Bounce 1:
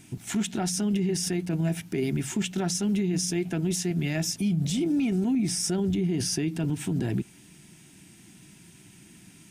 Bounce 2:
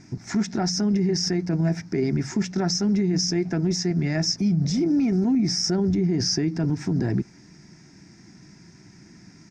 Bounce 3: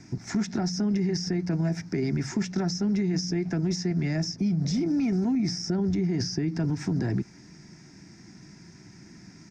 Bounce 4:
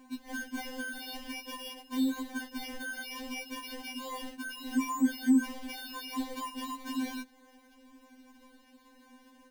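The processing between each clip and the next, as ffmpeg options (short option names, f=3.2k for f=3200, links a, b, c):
-af "firequalizer=gain_entry='entry(2000,0);entry(3000,-19);entry(5200,6);entry(9400,-29)':delay=0.05:min_phase=1,volume=4dB"
-filter_complex "[0:a]acrossover=split=280|600|5100[a][b][c][d];[a]acompressor=threshold=-25dB:ratio=4[e];[b]acompressor=threshold=-36dB:ratio=4[f];[c]acompressor=threshold=-38dB:ratio=4[g];[d]acompressor=threshold=-42dB:ratio=4[h];[e][f][g][h]amix=inputs=4:normalize=0"
-af "acrusher=samples=33:mix=1:aa=0.000001,afftfilt=real='re*3.46*eq(mod(b,12),0)':imag='im*3.46*eq(mod(b,12),0)':win_size=2048:overlap=0.75,volume=-3.5dB"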